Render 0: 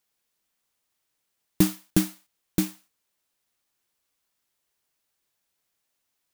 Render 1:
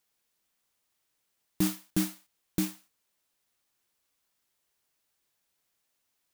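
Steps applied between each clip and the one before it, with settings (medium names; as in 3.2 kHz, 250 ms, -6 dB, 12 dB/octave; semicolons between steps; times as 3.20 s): peak limiter -15 dBFS, peak gain reduction 10 dB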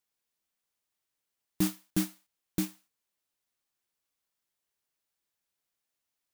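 upward expansion 1.5:1, over -38 dBFS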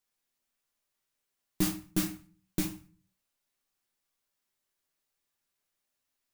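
reverberation RT60 0.35 s, pre-delay 5 ms, DRR 1.5 dB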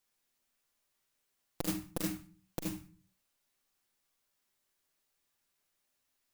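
transformer saturation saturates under 690 Hz; trim +3 dB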